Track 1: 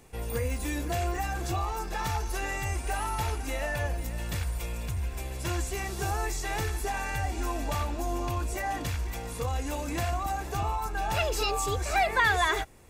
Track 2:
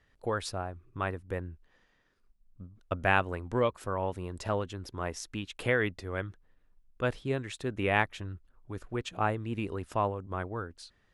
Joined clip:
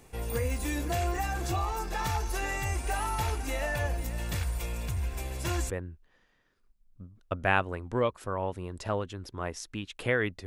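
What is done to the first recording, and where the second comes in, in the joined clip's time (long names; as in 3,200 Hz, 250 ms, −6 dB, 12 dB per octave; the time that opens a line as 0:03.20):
track 1
0:05.70: continue with track 2 from 0:01.30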